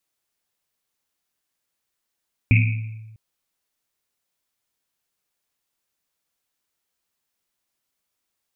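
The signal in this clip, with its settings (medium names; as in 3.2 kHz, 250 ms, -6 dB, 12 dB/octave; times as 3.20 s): Risset drum length 0.65 s, pitch 110 Hz, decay 1.27 s, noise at 2.4 kHz, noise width 400 Hz, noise 30%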